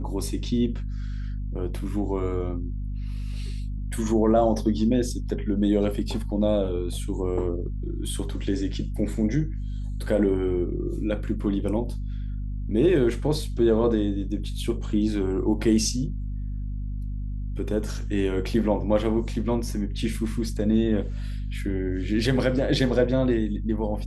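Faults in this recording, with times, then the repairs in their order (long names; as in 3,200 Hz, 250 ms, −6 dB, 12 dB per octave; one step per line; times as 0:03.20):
mains hum 50 Hz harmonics 5 −30 dBFS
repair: hum removal 50 Hz, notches 5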